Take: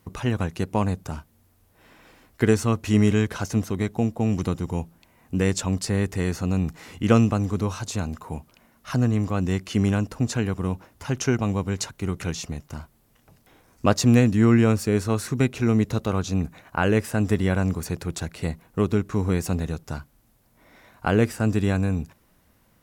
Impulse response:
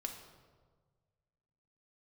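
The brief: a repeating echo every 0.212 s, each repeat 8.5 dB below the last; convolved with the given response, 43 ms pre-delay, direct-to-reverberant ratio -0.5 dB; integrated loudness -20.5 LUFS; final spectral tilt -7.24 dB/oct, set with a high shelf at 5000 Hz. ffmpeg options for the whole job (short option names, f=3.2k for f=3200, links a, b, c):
-filter_complex "[0:a]highshelf=f=5k:g=-6.5,aecho=1:1:212|424|636|848:0.376|0.143|0.0543|0.0206,asplit=2[a][b];[1:a]atrim=start_sample=2205,adelay=43[c];[b][c]afir=irnorm=-1:irlink=0,volume=1.5dB[d];[a][d]amix=inputs=2:normalize=0,volume=-1dB"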